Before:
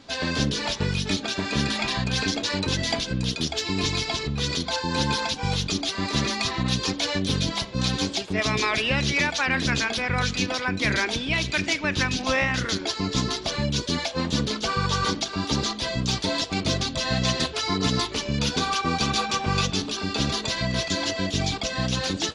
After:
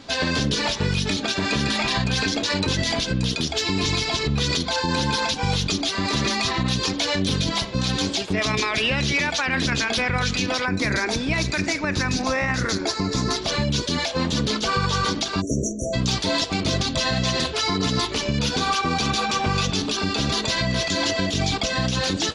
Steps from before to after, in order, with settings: 10.66–13.36 bell 3100 Hz -12.5 dB 0.45 oct; 15.41–15.94 spectral delete 670–5600 Hz; limiter -19 dBFS, peak gain reduction 8 dB; gain +6 dB

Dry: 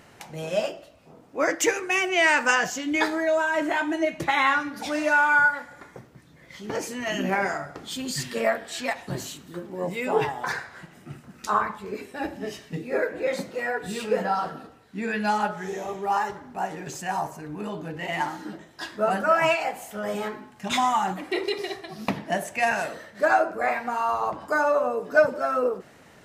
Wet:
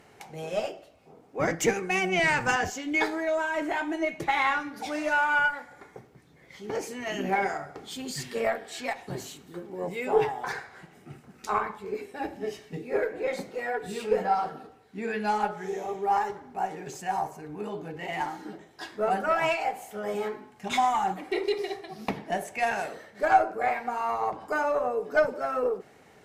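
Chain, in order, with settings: 1.39–2.7 octaver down 1 oct, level +4 dB; added harmonics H 4 -22 dB, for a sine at -5.5 dBFS; small resonant body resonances 420/770/2200 Hz, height 8 dB, ringing for 35 ms; gain -5.5 dB

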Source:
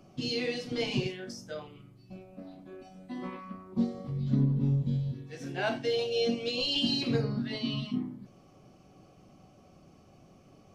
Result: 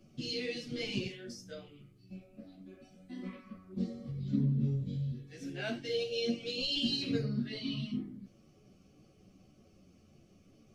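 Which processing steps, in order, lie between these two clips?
bell 910 Hz -14.5 dB 0.91 oct; ensemble effect

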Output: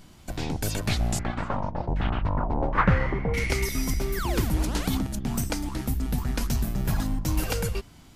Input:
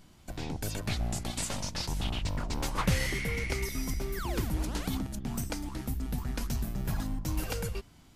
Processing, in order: 1.19–3.34 LFO low-pass saw down 1.3 Hz 590–1900 Hz; gain +6.5 dB

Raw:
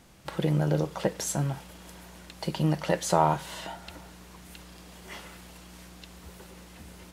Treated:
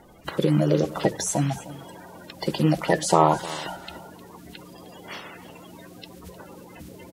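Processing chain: bin magnitudes rounded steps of 30 dB; notches 60/120 Hz; on a send: echo 0.307 s -18 dB; on the sum: gain +5.5 dB

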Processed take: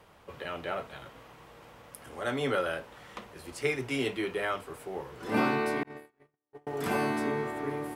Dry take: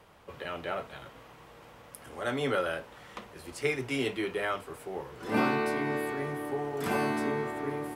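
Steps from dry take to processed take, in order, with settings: 5.83–6.67 gate -28 dBFS, range -55 dB

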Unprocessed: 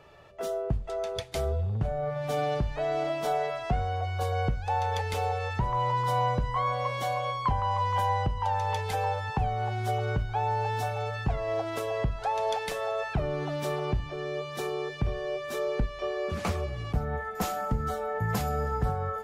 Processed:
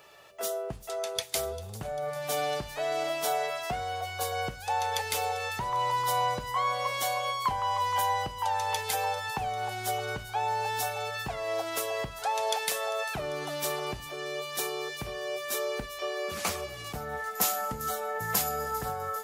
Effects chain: RIAA curve recording; thin delay 0.396 s, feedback 61%, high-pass 4400 Hz, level -15 dB

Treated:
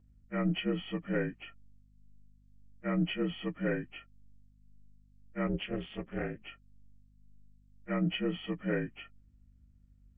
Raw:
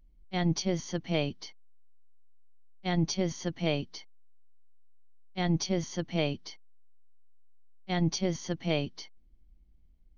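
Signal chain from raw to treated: inharmonic rescaling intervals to 79%; hum 50 Hz, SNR 27 dB; 5.47–6.42 AM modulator 220 Hz, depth 85%; gain -1.5 dB

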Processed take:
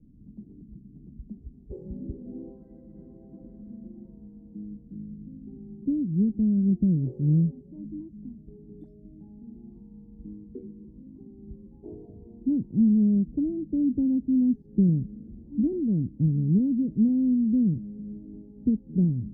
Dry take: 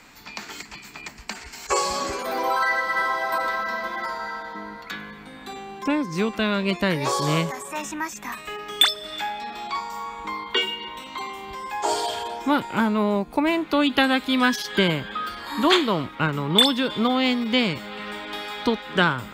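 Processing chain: inverse Chebyshev low-pass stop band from 1100 Hz, stop band 70 dB; gain +5 dB

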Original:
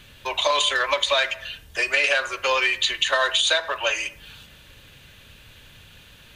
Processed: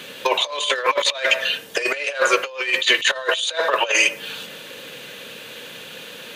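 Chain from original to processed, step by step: HPF 190 Hz 24 dB/oct; bell 490 Hz +11 dB 0.36 oct; negative-ratio compressor -26 dBFS, ratio -0.5; gain +6.5 dB

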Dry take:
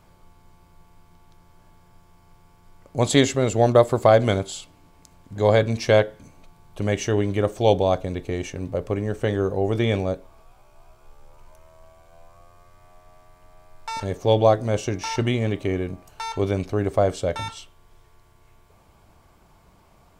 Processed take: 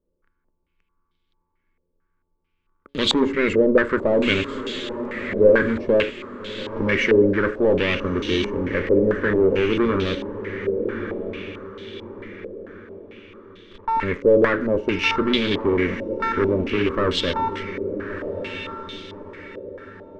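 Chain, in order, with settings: sample leveller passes 5; fixed phaser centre 300 Hz, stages 4; de-hum 139.8 Hz, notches 5; on a send: diffused feedback echo 1.239 s, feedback 41%, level -9 dB; on the sum: stepped low-pass 4.5 Hz 540–3500 Hz; gain -8.5 dB

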